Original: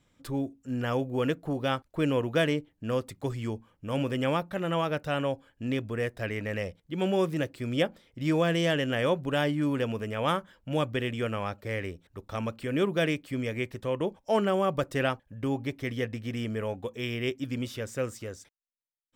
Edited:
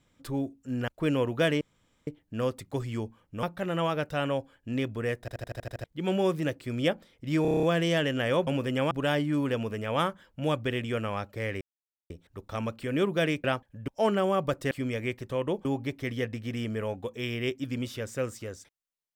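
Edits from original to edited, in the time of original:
0:00.88–0:01.84: remove
0:02.57: splice in room tone 0.46 s
0:03.93–0:04.37: move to 0:09.20
0:06.14: stutter in place 0.08 s, 8 plays
0:08.36: stutter 0.03 s, 8 plays
0:11.90: splice in silence 0.49 s
0:13.24–0:14.18: swap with 0:15.01–0:15.45

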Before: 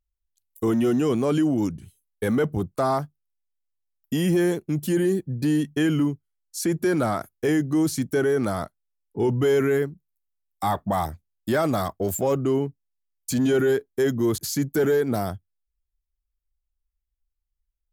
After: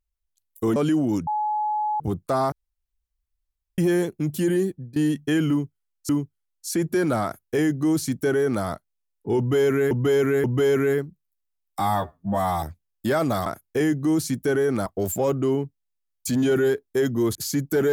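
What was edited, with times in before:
0:00.76–0:01.25: remove
0:01.76–0:02.49: beep over 848 Hz −21.5 dBFS
0:03.01–0:04.27: fill with room tone
0:05.09–0:05.45: fade out, to −19.5 dB
0:05.99–0:06.58: repeat, 2 plays
0:07.14–0:08.54: duplicate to 0:11.89
0:09.28–0:09.81: repeat, 3 plays
0:10.64–0:11.05: time-stretch 2×

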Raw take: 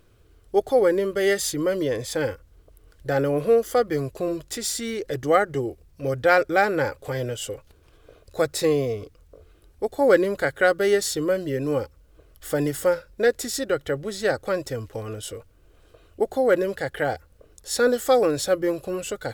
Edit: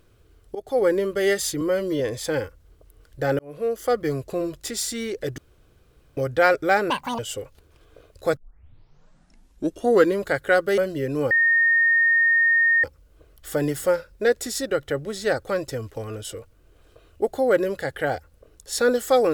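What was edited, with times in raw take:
0:00.55–0:00.88: fade in, from −18.5 dB
0:01.61–0:01.87: time-stretch 1.5×
0:03.26–0:03.87: fade in
0:05.25–0:06.04: fill with room tone
0:06.77–0:07.31: play speed 188%
0:08.49: tape start 1.77 s
0:10.90–0:11.29: remove
0:11.82: insert tone 1,840 Hz −15 dBFS 1.53 s

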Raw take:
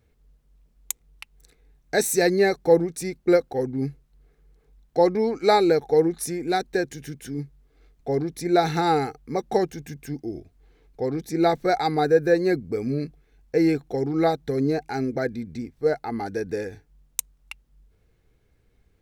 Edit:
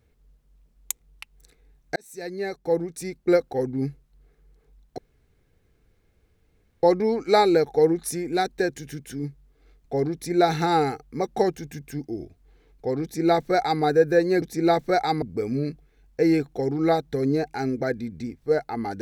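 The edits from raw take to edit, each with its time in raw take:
0:01.96–0:03.50: fade in
0:04.98: splice in room tone 1.85 s
0:11.18–0:11.98: duplicate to 0:12.57

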